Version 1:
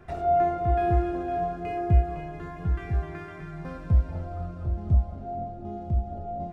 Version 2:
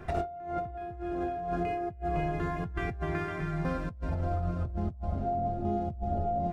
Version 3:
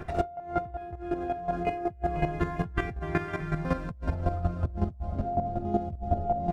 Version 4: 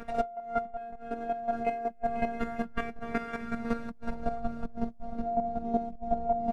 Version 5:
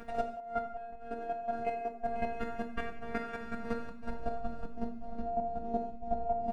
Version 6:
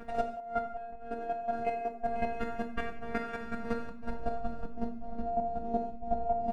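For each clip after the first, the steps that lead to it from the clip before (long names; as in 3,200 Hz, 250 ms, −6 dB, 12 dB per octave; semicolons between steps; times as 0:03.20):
compressor whose output falls as the input rises −34 dBFS, ratio −1
square-wave tremolo 5.4 Hz, depth 65%, duty 15%; level +7.5 dB
phases set to zero 232 Hz
convolution reverb, pre-delay 3 ms, DRR 5.5 dB; level −4.5 dB
one half of a high-frequency compander decoder only; level +2 dB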